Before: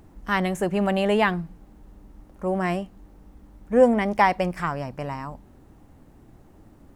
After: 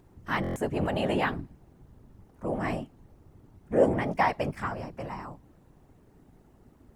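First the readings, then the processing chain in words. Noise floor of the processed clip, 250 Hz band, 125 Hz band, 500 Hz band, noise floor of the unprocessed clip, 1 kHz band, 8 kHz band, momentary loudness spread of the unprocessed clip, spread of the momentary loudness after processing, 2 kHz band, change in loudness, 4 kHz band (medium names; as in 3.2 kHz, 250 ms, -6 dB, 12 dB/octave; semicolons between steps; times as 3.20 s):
-59 dBFS, -6.5 dB, -3.5 dB, -6.0 dB, -52 dBFS, -6.5 dB, no reading, 14 LU, 15 LU, -6.0 dB, -6.0 dB, -6.0 dB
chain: whisper effect; buffer glitch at 0.42 s, samples 1024, times 5; trim -6 dB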